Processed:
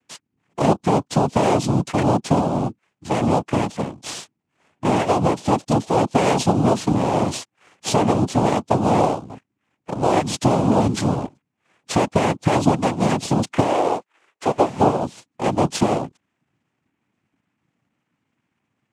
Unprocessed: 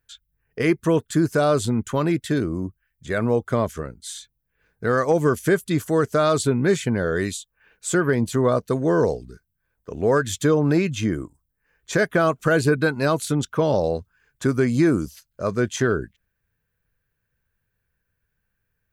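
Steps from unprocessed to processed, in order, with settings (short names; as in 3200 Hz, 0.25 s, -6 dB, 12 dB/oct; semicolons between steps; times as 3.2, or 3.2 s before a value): spectral gate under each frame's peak -30 dB strong; in parallel at -4.5 dB: sample-and-hold 18×; on the sum: dynamic EQ 1400 Hz, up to -7 dB, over -34 dBFS, Q 0.76; 13.63–15.01 Chebyshev band-pass 330–4000 Hz, order 4; compressor, threshold -17 dBFS, peak gain reduction 6.5 dB; noise vocoder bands 4; gain +3.5 dB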